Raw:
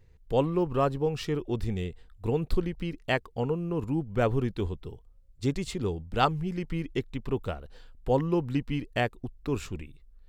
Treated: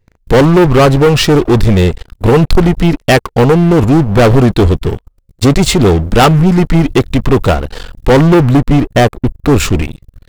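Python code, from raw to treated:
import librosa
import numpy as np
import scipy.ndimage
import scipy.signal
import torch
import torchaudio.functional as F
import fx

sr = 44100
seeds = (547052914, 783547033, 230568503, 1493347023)

y = fx.peak_eq(x, sr, hz=4800.0, db=-7.5, octaves=3.0, at=(8.49, 9.6))
y = fx.leveller(y, sr, passes=5)
y = y * 10.0 ** (8.5 / 20.0)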